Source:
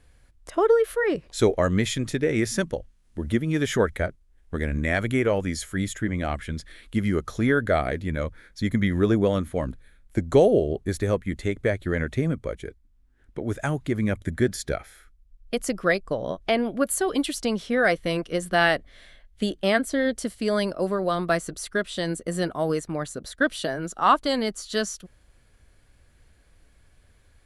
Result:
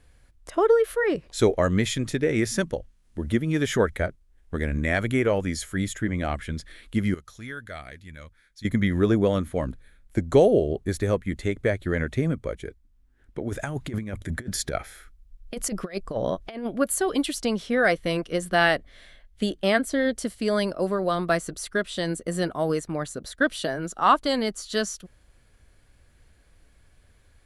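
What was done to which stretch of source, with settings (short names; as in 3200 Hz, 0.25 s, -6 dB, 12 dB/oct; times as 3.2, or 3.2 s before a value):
7.14–8.65 passive tone stack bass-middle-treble 5-5-5
13.48–16.67 negative-ratio compressor -28 dBFS, ratio -0.5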